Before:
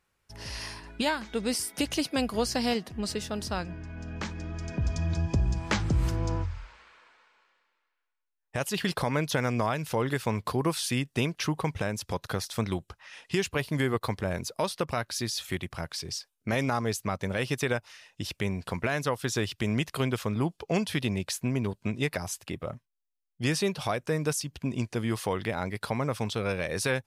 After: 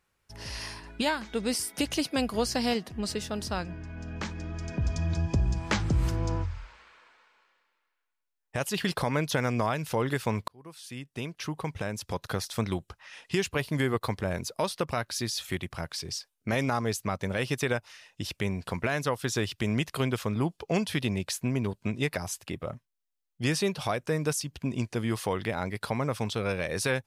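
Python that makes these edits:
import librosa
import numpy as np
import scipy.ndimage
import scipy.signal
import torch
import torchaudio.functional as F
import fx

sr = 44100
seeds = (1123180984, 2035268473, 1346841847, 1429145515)

y = fx.edit(x, sr, fx.fade_in_span(start_s=10.48, length_s=1.87), tone=tone)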